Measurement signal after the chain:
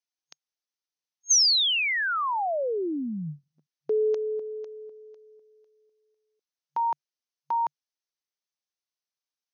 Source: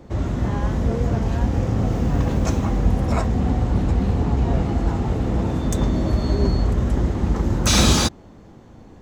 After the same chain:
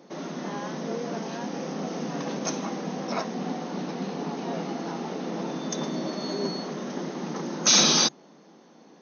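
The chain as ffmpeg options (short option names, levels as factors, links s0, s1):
-af "afftfilt=real='re*between(b*sr/4096,140,6500)':imag='im*between(b*sr/4096,140,6500)':win_size=4096:overlap=0.75,bass=f=250:g=-7,treble=f=4000:g=10,volume=0.631"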